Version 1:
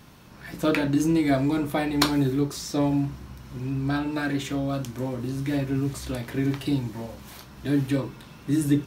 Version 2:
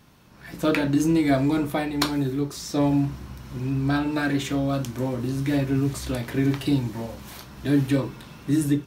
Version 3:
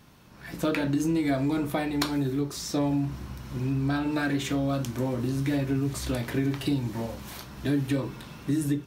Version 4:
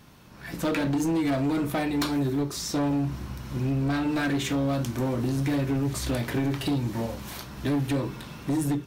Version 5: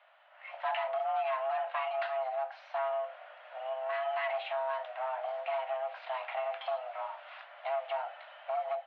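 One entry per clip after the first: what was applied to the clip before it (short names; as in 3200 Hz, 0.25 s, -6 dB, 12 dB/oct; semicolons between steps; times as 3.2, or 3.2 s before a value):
AGC gain up to 8 dB; gain -5 dB
compressor 3:1, threshold -24 dBFS, peak gain reduction 6.5 dB
hard clip -24.5 dBFS, distortion -13 dB; gain +2.5 dB
mistuned SSB +390 Hz 250–2800 Hz; gain -6 dB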